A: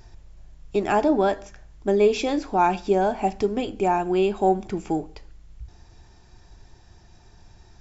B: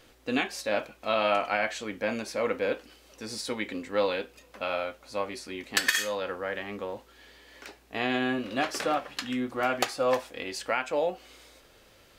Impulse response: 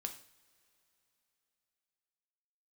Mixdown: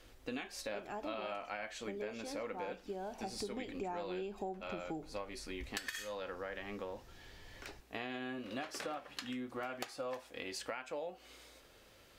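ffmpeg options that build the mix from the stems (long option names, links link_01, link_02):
-filter_complex "[0:a]volume=-7.5dB,afade=type=in:start_time=3.18:duration=0.39:silence=0.334965[link_01];[1:a]volume=-4.5dB[link_02];[link_01][link_02]amix=inputs=2:normalize=0,acompressor=threshold=-39dB:ratio=6"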